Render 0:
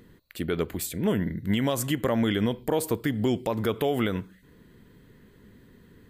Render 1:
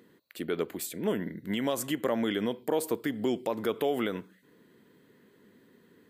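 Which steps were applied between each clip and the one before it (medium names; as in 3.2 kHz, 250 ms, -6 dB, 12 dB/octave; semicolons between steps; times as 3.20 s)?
high-pass 300 Hz 12 dB/octave; bass shelf 420 Hz +5.5 dB; trim -4 dB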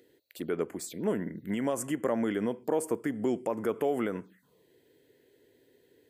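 touch-sensitive phaser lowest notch 170 Hz, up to 3.9 kHz, full sweep at -31 dBFS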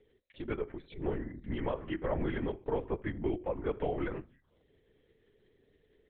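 reverberation RT60 0.30 s, pre-delay 5 ms, DRR 12.5 dB; LPC vocoder at 8 kHz whisper; trim -4 dB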